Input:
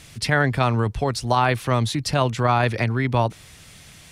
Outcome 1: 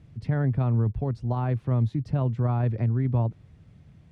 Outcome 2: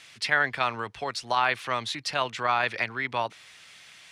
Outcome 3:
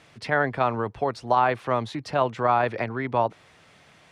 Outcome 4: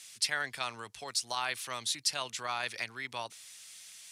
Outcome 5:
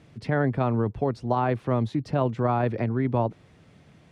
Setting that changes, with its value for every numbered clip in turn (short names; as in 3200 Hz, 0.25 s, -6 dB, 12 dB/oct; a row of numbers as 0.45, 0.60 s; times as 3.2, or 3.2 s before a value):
band-pass, frequency: 110, 2300, 750, 8000, 300 Hz